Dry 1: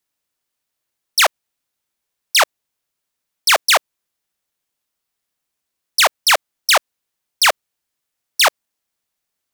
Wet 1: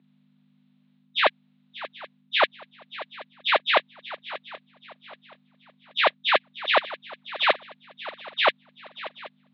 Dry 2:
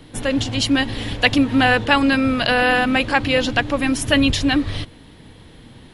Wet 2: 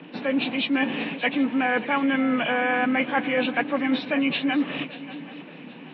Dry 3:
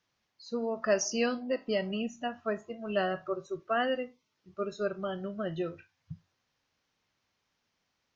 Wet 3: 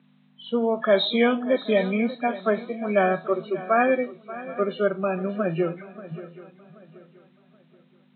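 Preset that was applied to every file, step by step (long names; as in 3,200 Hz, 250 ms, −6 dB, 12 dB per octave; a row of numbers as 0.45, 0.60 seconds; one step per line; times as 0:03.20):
hearing-aid frequency compression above 1,600 Hz 1.5 to 1
reversed playback
downward compressor, threshold −23 dBFS
reversed playback
mains hum 50 Hz, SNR 24 dB
Chebyshev band-pass filter 160–3,900 Hz, order 5
feedback echo with a long and a short gap by turns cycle 778 ms, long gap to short 3 to 1, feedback 32%, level −16 dB
loudness normalisation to −24 LKFS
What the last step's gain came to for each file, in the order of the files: +5.5, +3.0, +10.5 decibels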